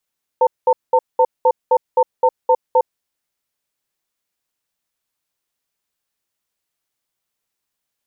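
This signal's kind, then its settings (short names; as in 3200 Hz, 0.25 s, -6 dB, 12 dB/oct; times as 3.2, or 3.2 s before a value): cadence 507 Hz, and 903 Hz, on 0.06 s, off 0.20 s, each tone -12 dBFS 2.51 s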